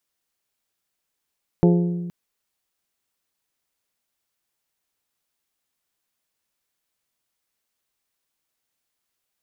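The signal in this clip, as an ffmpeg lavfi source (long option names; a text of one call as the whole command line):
ffmpeg -f lavfi -i "aevalsrc='0.251*pow(10,-3*t/1.6)*sin(2*PI*174*t)+0.158*pow(10,-3*t/0.985)*sin(2*PI*348*t)+0.1*pow(10,-3*t/0.867)*sin(2*PI*417.6*t)+0.0631*pow(10,-3*t/0.742)*sin(2*PI*522*t)+0.0398*pow(10,-3*t/0.606)*sin(2*PI*696*t)+0.0251*pow(10,-3*t/0.519)*sin(2*PI*870*t)':duration=0.47:sample_rate=44100" out.wav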